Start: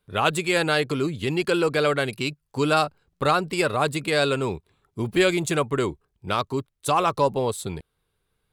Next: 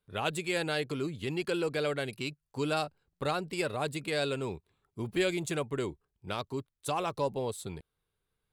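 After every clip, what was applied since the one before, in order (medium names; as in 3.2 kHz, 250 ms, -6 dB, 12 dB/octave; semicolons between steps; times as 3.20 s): dynamic bell 1.2 kHz, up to -6 dB, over -36 dBFS, Q 2.3; trim -9 dB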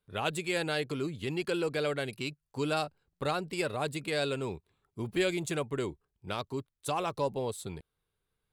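no audible change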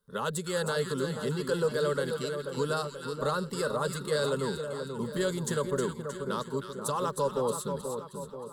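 in parallel at +0.5 dB: peak limiter -26 dBFS, peak gain reduction 9 dB; on the sum: static phaser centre 480 Hz, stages 8; two-band feedback delay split 1.3 kHz, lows 483 ms, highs 313 ms, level -6.5 dB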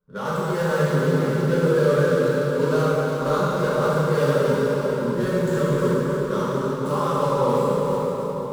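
median filter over 15 samples; plate-style reverb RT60 3.5 s, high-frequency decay 0.8×, DRR -10 dB; tape noise reduction on one side only decoder only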